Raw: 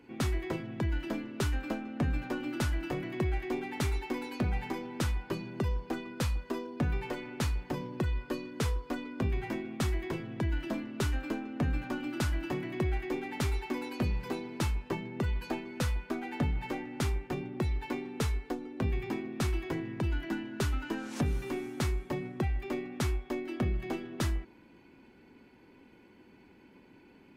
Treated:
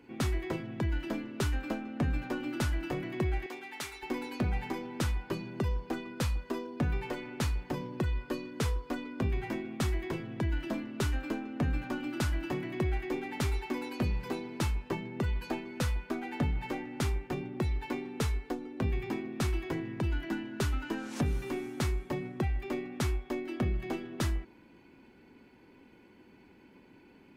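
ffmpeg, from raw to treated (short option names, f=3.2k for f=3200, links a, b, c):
-filter_complex "[0:a]asettb=1/sr,asplit=3[a][b][c];[a]atrim=end=3.464[d];[b]atrim=start=3.46:end=4.03,asetpts=PTS-STARTPTS,afade=t=in:d=0.004:c=qsin,afade=t=out:st=0.566:d=0.004:c=qsin,highpass=f=1.3k:p=1[e];[c]atrim=start=4.026[f];[d][e]acrossfade=d=0.004:c1=hsin:c2=qsin[g];[g][f]acrossfade=d=0.004:c1=qsin:c2=hsin"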